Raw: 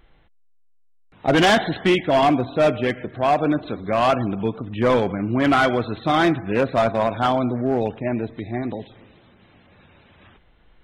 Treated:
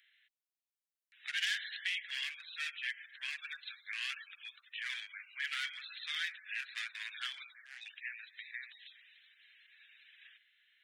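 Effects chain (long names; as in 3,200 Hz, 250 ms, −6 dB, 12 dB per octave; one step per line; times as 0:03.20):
Chebyshev high-pass filter 1,700 Hz, order 5
downward compressor 2 to 1, threshold −38 dBFS, peak gain reduction 11 dB
level −2 dB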